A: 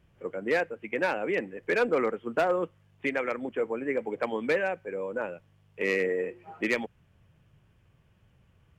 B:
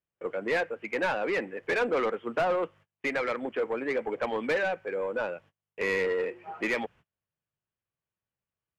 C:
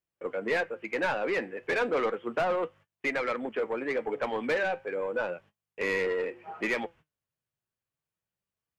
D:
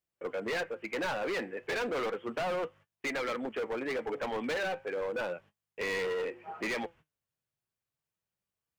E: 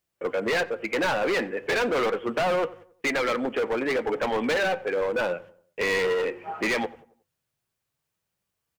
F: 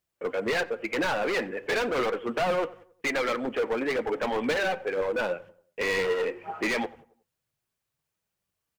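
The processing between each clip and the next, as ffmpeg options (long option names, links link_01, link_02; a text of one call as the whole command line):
ffmpeg -i in.wav -filter_complex "[0:a]asplit=2[link_01][link_02];[link_02]highpass=frequency=720:poles=1,volume=16dB,asoftclip=type=tanh:threshold=-17.5dB[link_03];[link_01][link_03]amix=inputs=2:normalize=0,lowpass=frequency=2500:poles=1,volume=-6dB,agate=range=-30dB:threshold=-49dB:ratio=16:detection=peak,volume=-2.5dB" out.wav
ffmpeg -i in.wav -af "flanger=delay=2.7:depth=5.8:regen=79:speed=0.33:shape=triangular,volume=4dB" out.wav
ffmpeg -i in.wav -af "asoftclip=type=hard:threshold=-29.5dB,volume=-1dB" out.wav
ffmpeg -i in.wav -filter_complex "[0:a]asplit=2[link_01][link_02];[link_02]adelay=91,lowpass=frequency=1600:poles=1,volume=-18dB,asplit=2[link_03][link_04];[link_04]adelay=91,lowpass=frequency=1600:poles=1,volume=0.43,asplit=2[link_05][link_06];[link_06]adelay=91,lowpass=frequency=1600:poles=1,volume=0.43,asplit=2[link_07][link_08];[link_08]adelay=91,lowpass=frequency=1600:poles=1,volume=0.43[link_09];[link_01][link_03][link_05][link_07][link_09]amix=inputs=5:normalize=0,volume=8.5dB" out.wav
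ffmpeg -i in.wav -af "aphaser=in_gain=1:out_gain=1:delay=5:decay=0.29:speed=2:type=triangular,volume=-2.5dB" out.wav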